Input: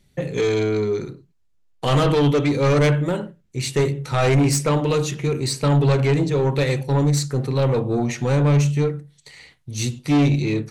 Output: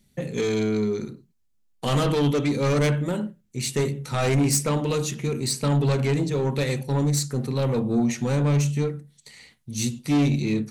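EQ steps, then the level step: peaking EQ 220 Hz +11.5 dB 0.35 oct; treble shelf 6.3 kHz +10.5 dB; -5.5 dB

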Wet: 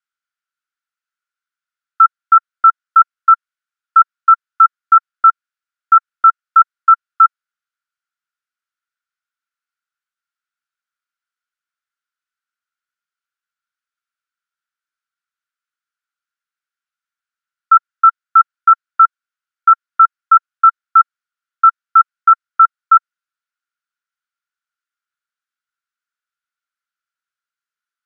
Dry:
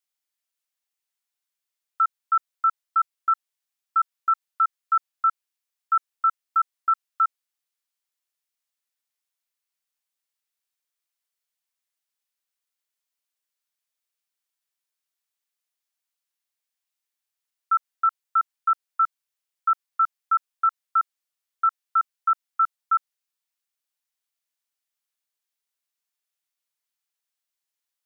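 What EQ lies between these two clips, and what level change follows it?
resonant high-pass 1.4 kHz, resonance Q 11; distance through air 53 m; -4.0 dB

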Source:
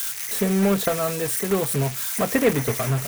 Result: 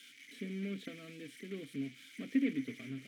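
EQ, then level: vowel filter i; -5.0 dB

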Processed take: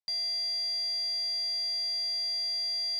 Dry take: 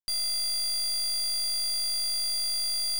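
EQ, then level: band-pass 170–6500 Hz; static phaser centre 2 kHz, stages 8; 0.0 dB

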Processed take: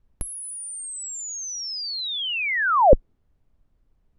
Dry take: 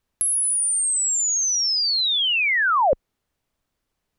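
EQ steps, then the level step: dynamic bell 310 Hz, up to +5 dB, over -38 dBFS, Q 0.86; tilt EQ -4 dB/octave; 0.0 dB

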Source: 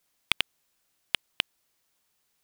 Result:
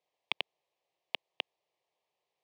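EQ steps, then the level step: band-pass 220–2100 Hz; static phaser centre 600 Hz, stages 4; +2.0 dB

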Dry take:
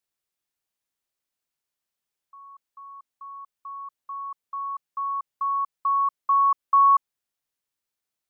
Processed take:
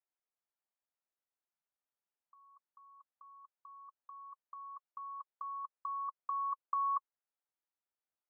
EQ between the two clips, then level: band-pass filter 970 Hz, Q 0.86; distance through air 440 m; band-stop 1.1 kHz, Q 15; -3.0 dB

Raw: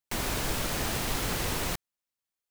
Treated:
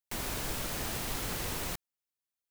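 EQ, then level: treble shelf 8.9 kHz +4.5 dB; -6.0 dB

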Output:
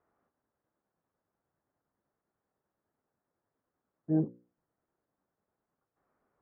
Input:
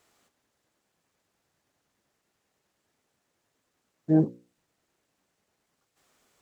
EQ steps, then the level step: low-pass 1.5 kHz 24 dB/octave; dynamic bell 920 Hz, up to -4 dB, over -41 dBFS, Q 1; -6.5 dB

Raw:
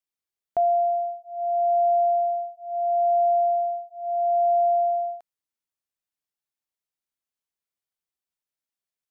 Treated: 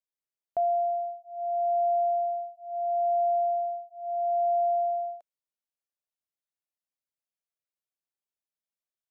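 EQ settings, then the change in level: peaking EQ 600 Hz +7 dB 0.44 oct; -8.5 dB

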